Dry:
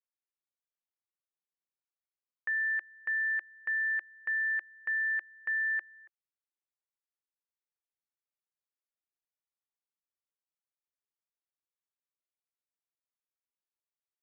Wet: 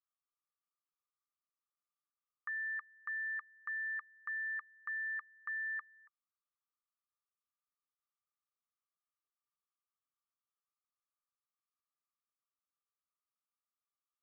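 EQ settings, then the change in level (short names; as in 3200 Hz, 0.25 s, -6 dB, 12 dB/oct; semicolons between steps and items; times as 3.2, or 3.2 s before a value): band-pass 1200 Hz, Q 14; +12.5 dB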